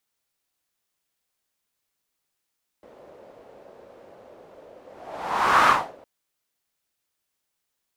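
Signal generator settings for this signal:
pass-by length 3.21 s, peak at 0:02.84, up 0.91 s, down 0.32 s, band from 540 Hz, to 1,200 Hz, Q 3, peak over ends 31.5 dB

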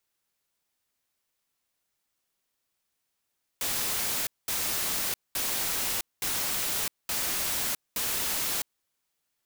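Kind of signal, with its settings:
noise bursts white, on 0.66 s, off 0.21 s, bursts 6, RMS −29.5 dBFS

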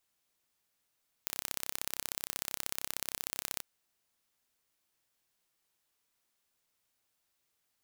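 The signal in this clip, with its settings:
impulse train 33 per second, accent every 2, −6.5 dBFS 2.34 s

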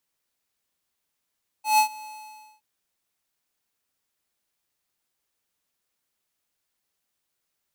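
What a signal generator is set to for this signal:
note with an ADSR envelope square 859 Hz, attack 144 ms, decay 95 ms, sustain −23 dB, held 0.41 s, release 558 ms −16.5 dBFS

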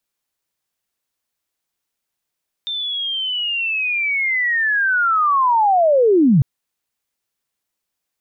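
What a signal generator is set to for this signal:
glide linear 3,600 Hz → 120 Hz −21.5 dBFS → −9 dBFS 3.75 s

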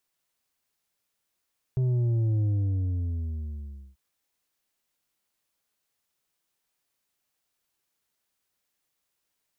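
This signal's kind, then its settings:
bass drop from 130 Hz, over 2.19 s, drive 6 dB, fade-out 1.54 s, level −22.5 dB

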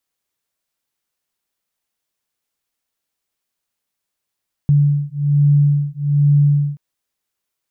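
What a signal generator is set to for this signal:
two tones that beat 144 Hz, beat 1.2 Hz, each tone −14.5 dBFS 2.08 s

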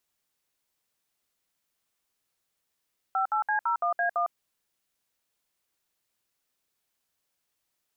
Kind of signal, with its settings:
touch tones "58C01A1", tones 105 ms, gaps 63 ms, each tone −26 dBFS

